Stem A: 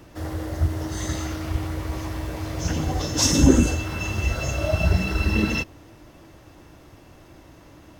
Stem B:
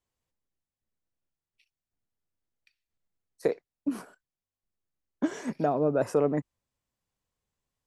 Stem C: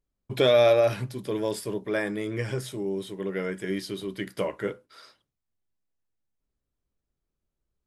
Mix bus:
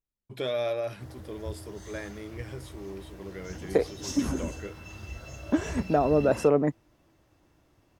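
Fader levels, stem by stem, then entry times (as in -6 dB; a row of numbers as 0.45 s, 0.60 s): -16.5 dB, +3.0 dB, -10.5 dB; 0.85 s, 0.30 s, 0.00 s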